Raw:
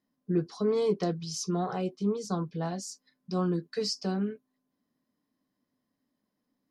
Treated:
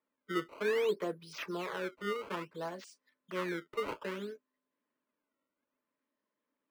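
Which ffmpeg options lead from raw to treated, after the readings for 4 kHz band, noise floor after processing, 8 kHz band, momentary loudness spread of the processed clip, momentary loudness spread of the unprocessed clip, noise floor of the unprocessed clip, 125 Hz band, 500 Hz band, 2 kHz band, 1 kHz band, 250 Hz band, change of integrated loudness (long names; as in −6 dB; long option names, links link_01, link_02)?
−7.0 dB, below −85 dBFS, −15.5 dB, 11 LU, 8 LU, −82 dBFS, −16.5 dB, −4.5 dB, +8.0 dB, −3.5 dB, −11.0 dB, −6.0 dB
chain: -filter_complex "[0:a]acrusher=samples=15:mix=1:aa=0.000001:lfo=1:lforange=24:lforate=0.6,asuperstop=centerf=750:order=4:qfactor=4.9,acrossover=split=350 3100:gain=0.112 1 0.158[link_01][link_02][link_03];[link_01][link_02][link_03]amix=inputs=3:normalize=0,volume=-1dB"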